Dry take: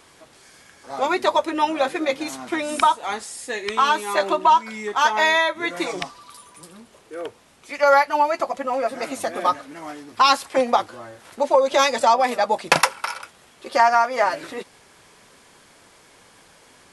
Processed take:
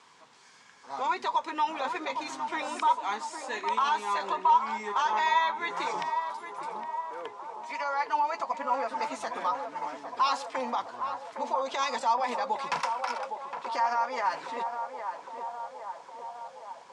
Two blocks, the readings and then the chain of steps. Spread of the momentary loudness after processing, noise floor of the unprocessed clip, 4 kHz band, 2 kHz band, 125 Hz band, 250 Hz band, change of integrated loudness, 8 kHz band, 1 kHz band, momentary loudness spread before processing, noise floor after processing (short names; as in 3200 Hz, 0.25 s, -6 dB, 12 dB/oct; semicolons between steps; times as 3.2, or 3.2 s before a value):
13 LU, -53 dBFS, -11.5 dB, -11.0 dB, under -10 dB, -13.5 dB, -10.0 dB, -13.0 dB, -6.5 dB, 18 LU, -54 dBFS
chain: limiter -15 dBFS, peak gain reduction 12 dB; speaker cabinet 180–7500 Hz, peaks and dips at 330 Hz -10 dB, 600 Hz -8 dB, 980 Hz +9 dB; narrowing echo 0.811 s, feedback 71%, band-pass 660 Hz, level -6 dB; gain -6.5 dB